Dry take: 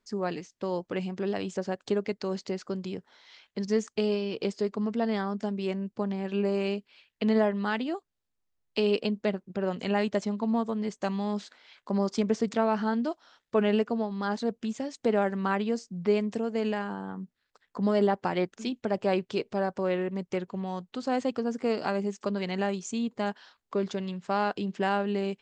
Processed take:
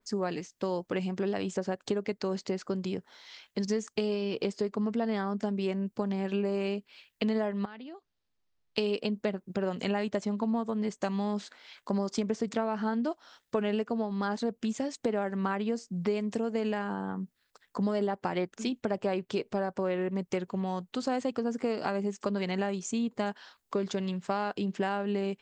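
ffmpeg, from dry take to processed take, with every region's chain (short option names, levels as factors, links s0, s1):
-filter_complex "[0:a]asettb=1/sr,asplit=3[s0][s1][s2];[s0]atrim=end=7.654[s3];[s1]atrim=start=7.65:end=8.78,asetpts=PTS-STARTPTS,afade=t=in:d=0.004:c=qsin,afade=t=out:st=1.126:d=0.004:c=qsin,lowpass=f=5200:w=0.5412,lowpass=f=5200:w=1.3066,acompressor=threshold=0.00447:ratio=4:attack=3.2:release=140:knee=1:detection=peak[s4];[s2]atrim=start=8.776[s5];[s3][s4]acrossfade=d=0.004:c1=hsin:c2=qsin[s6];[s6][s5]acrossfade=d=0.004:c1=qsin:c2=hsin,highshelf=f=7100:g=11,acompressor=threshold=0.0355:ratio=5,adynamicequalizer=threshold=0.00224:dfrequency=3000:dqfactor=0.7:tfrequency=3000:tqfactor=0.7:attack=5:release=100:ratio=0.375:range=3.5:mode=cutabove:tftype=highshelf,volume=1.33"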